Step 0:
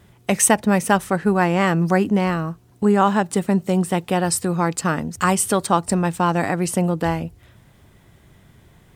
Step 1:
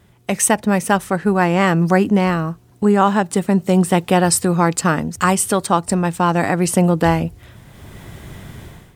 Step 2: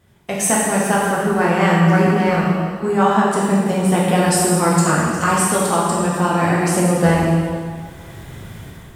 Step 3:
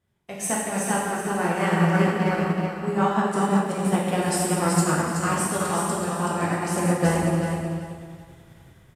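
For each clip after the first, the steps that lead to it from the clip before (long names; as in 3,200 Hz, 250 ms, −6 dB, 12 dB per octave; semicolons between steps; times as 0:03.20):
automatic gain control gain up to 16.5 dB; level −1 dB
dense smooth reverb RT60 1.9 s, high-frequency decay 0.9×, DRR −6 dB; level −6 dB
repeating echo 377 ms, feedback 34%, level −4.5 dB; downsampling to 32,000 Hz; expander for the loud parts 1.5 to 1, over −35 dBFS; level −6 dB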